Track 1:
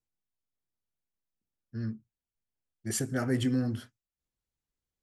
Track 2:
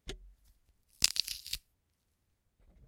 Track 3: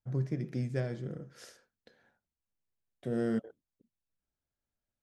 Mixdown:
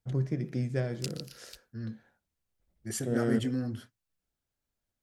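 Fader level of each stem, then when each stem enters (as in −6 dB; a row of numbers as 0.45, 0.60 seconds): −3.5, −12.5, +2.5 decibels; 0.00, 0.00, 0.00 seconds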